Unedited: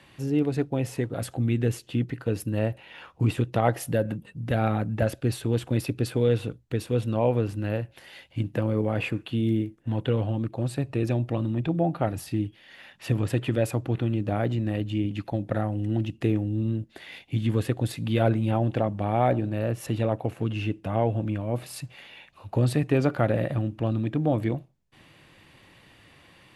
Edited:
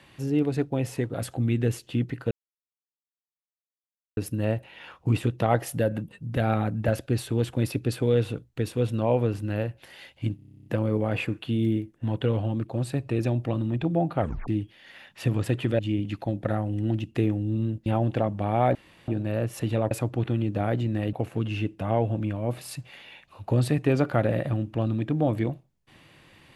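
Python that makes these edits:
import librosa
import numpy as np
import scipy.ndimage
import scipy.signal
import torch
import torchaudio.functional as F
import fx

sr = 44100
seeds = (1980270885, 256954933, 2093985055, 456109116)

y = fx.edit(x, sr, fx.insert_silence(at_s=2.31, length_s=1.86),
    fx.stutter(start_s=8.5, slice_s=0.03, count=11),
    fx.tape_stop(start_s=12.05, length_s=0.27),
    fx.move(start_s=13.63, length_s=1.22, to_s=20.18),
    fx.cut(start_s=16.92, length_s=1.54),
    fx.insert_room_tone(at_s=19.35, length_s=0.33), tone=tone)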